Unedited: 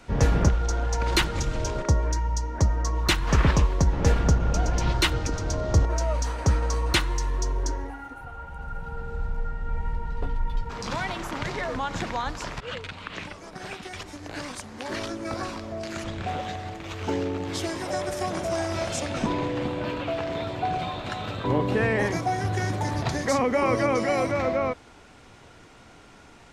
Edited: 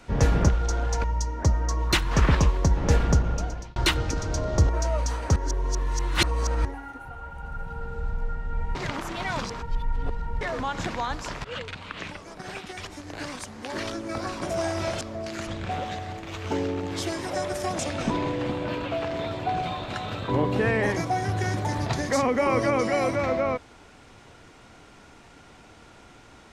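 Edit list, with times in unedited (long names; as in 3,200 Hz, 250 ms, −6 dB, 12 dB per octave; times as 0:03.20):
0:01.04–0:02.20: remove
0:04.33–0:04.92: fade out
0:06.52–0:07.81: reverse
0:09.91–0:11.57: reverse
0:18.36–0:18.95: move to 0:15.58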